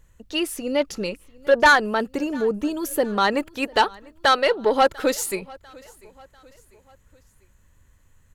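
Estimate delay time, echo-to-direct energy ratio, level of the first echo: 695 ms, -23.0 dB, -24.0 dB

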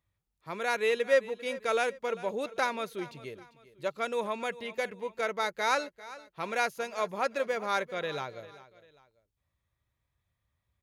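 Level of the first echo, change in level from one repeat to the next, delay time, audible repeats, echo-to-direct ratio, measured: -17.5 dB, -8.5 dB, 396 ms, 2, -17.0 dB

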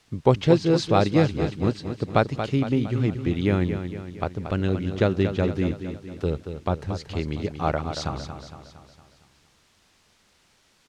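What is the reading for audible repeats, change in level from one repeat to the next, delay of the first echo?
5, -5.5 dB, 230 ms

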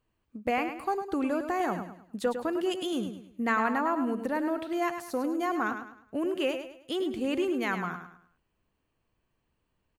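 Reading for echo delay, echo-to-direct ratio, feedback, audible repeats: 104 ms, -8.0 dB, 35%, 3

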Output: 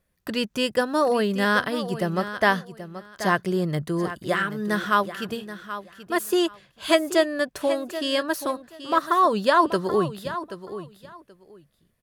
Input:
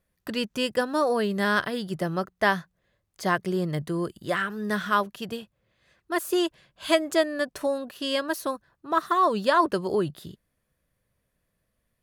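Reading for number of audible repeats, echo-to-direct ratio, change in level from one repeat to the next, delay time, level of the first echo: 2, -12.5 dB, -14.5 dB, 780 ms, -12.5 dB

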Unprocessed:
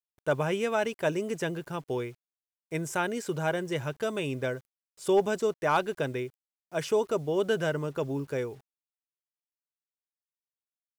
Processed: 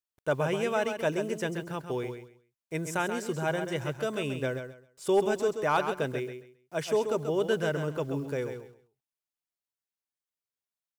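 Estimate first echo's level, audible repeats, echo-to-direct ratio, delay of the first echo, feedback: -8.0 dB, 3, -8.0 dB, 133 ms, 22%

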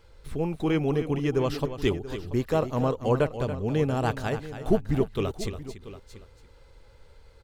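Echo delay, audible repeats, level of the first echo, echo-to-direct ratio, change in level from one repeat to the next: 282 ms, 3, -11.0 dB, -9.5 dB, no regular repeats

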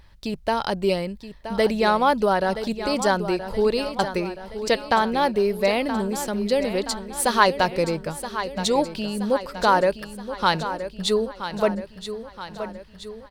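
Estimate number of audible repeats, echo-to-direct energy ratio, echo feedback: 5, -9.5 dB, 55%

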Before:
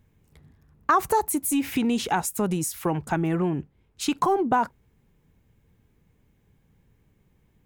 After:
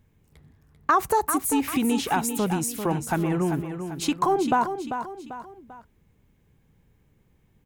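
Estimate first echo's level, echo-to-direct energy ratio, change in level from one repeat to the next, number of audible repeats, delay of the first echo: -8.5 dB, -7.5 dB, -7.5 dB, 3, 393 ms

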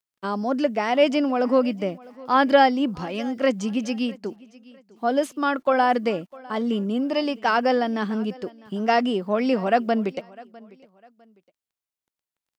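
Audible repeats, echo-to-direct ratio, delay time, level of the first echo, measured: 2, -22.0 dB, 653 ms, -22.5 dB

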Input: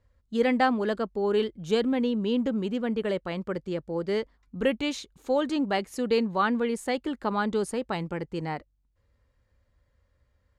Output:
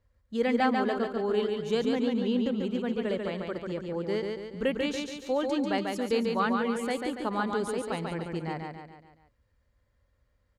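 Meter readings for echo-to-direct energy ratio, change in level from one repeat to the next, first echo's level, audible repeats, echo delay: -3.0 dB, -6.0 dB, -4.0 dB, 5, 142 ms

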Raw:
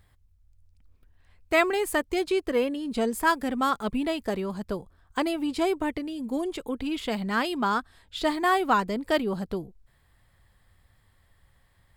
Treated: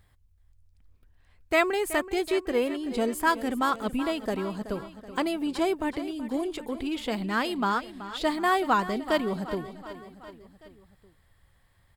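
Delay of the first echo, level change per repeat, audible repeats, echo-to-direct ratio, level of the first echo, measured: 377 ms, -4.5 dB, 4, -12.0 dB, -14.0 dB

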